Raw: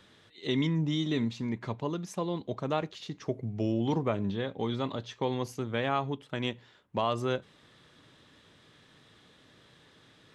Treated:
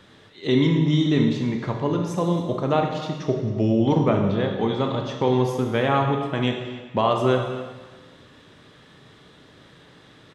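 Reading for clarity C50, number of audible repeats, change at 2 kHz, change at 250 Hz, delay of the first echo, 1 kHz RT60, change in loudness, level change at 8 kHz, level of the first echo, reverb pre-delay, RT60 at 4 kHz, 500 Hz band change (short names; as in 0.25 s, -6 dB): 4.5 dB, 1, +8.0 dB, +10.0 dB, 0.273 s, 1.4 s, +10.0 dB, n/a, -18.0 dB, 17 ms, 1.3 s, +10.5 dB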